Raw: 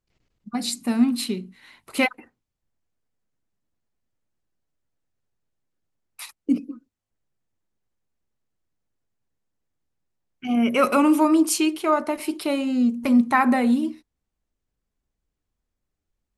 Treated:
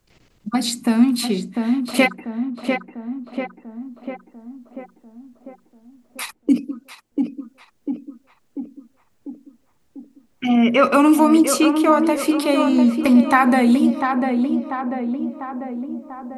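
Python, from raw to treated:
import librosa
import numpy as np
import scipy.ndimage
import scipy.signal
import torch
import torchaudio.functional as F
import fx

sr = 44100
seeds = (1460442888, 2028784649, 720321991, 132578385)

p1 = fx.peak_eq(x, sr, hz=630.0, db=13.5, octaves=0.2, at=(1.35, 2.02))
p2 = fx.lowpass(p1, sr, hz=4500.0, slope=12, at=(10.48, 10.93), fade=0.02)
p3 = p2 + fx.echo_tape(p2, sr, ms=694, feedback_pct=54, wet_db=-5, lp_hz=1400.0, drive_db=10.0, wow_cents=30, dry=0)
p4 = fx.band_squash(p3, sr, depth_pct=40)
y = p4 * librosa.db_to_amplitude(5.5)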